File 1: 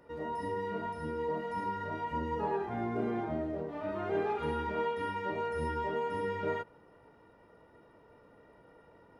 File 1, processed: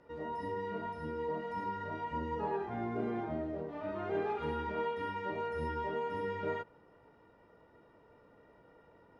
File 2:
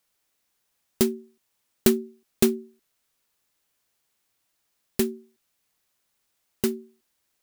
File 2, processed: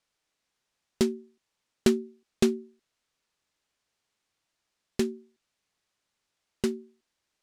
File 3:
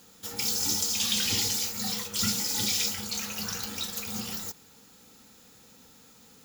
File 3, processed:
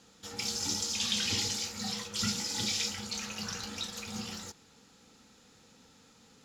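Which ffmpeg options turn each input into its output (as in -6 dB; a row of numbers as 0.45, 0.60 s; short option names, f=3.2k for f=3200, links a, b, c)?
-af "lowpass=6.7k,volume=-2.5dB"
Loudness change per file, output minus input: -2.5, -3.5, -5.0 LU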